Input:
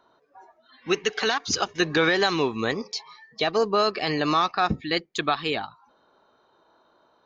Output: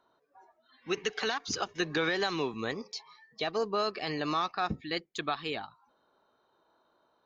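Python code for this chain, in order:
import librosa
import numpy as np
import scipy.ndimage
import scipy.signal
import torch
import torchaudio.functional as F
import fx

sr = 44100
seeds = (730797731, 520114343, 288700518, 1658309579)

y = fx.band_squash(x, sr, depth_pct=40, at=(0.97, 2.54))
y = y * librosa.db_to_amplitude(-8.5)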